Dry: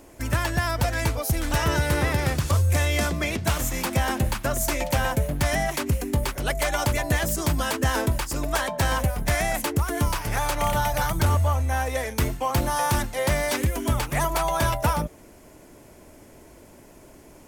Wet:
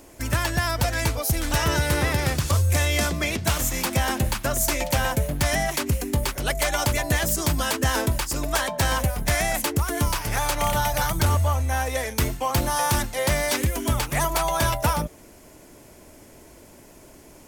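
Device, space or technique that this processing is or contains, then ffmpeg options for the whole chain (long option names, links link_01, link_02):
presence and air boost: -af "equalizer=frequency=4900:width_type=o:width=2:gain=3.5,highshelf=frequency=11000:gain=5"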